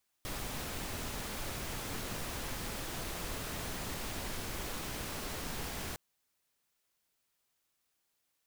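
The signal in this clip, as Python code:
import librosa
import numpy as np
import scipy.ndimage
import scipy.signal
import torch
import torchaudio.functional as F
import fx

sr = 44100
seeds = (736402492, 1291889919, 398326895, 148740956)

y = fx.noise_colour(sr, seeds[0], length_s=5.71, colour='pink', level_db=-39.5)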